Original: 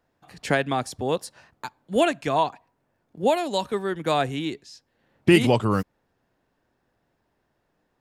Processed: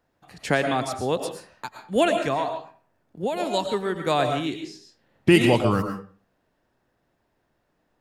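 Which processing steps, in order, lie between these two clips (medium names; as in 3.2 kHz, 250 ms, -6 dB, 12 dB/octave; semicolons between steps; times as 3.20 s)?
2.33–3.40 s: compression 6:1, threshold -23 dBFS, peak gain reduction 8 dB; reverberation RT60 0.40 s, pre-delay 75 ms, DRR 5.5 dB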